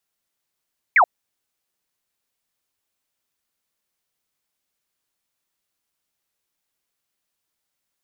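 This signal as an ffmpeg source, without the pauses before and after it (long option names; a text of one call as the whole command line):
ffmpeg -f lavfi -i "aevalsrc='0.316*clip(t/0.002,0,1)*clip((0.08-t)/0.002,0,1)*sin(2*PI*2400*0.08/log(630/2400)*(exp(log(630/2400)*t/0.08)-1))':duration=0.08:sample_rate=44100" out.wav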